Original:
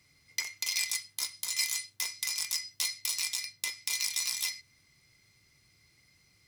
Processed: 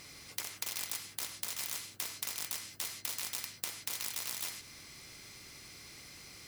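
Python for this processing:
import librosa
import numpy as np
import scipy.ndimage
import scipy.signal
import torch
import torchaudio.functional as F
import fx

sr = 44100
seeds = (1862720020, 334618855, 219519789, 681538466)

y = fx.spectral_comp(x, sr, ratio=4.0)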